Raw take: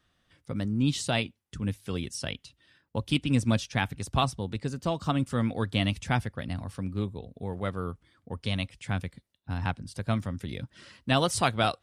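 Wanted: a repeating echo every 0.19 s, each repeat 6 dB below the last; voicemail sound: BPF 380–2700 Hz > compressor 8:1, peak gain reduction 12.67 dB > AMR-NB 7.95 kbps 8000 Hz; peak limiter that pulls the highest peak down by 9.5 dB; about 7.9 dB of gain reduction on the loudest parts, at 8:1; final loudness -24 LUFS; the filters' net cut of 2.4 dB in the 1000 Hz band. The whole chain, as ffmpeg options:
-af "equalizer=f=1k:t=o:g=-3,acompressor=threshold=-28dB:ratio=8,alimiter=level_in=2dB:limit=-24dB:level=0:latency=1,volume=-2dB,highpass=380,lowpass=2.7k,aecho=1:1:190|380|570|760|950|1140:0.501|0.251|0.125|0.0626|0.0313|0.0157,acompressor=threshold=-46dB:ratio=8,volume=28.5dB" -ar 8000 -c:a libopencore_amrnb -b:a 7950

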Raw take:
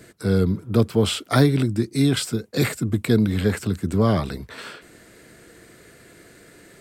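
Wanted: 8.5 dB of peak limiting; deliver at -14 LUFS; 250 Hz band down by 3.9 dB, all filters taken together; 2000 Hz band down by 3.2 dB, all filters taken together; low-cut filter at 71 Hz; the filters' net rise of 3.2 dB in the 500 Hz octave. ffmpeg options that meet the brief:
-af "highpass=71,equalizer=f=250:t=o:g=-6.5,equalizer=f=500:t=o:g=6,equalizer=f=2k:t=o:g=-4.5,volume=11dB,alimiter=limit=-2.5dB:level=0:latency=1"

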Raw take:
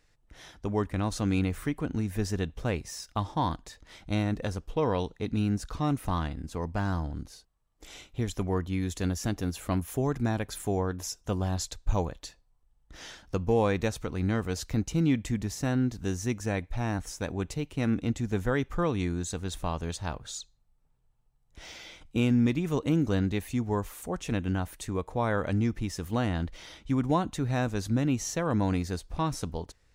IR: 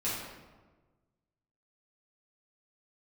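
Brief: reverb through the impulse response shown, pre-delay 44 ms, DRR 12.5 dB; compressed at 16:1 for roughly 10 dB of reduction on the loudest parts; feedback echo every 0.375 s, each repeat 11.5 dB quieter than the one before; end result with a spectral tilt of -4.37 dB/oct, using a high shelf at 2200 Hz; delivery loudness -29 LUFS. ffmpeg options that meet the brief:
-filter_complex "[0:a]highshelf=f=2.2k:g=8,acompressor=threshold=-30dB:ratio=16,aecho=1:1:375|750|1125:0.266|0.0718|0.0194,asplit=2[a][b];[1:a]atrim=start_sample=2205,adelay=44[c];[b][c]afir=irnorm=-1:irlink=0,volume=-19dB[d];[a][d]amix=inputs=2:normalize=0,volume=6.5dB"

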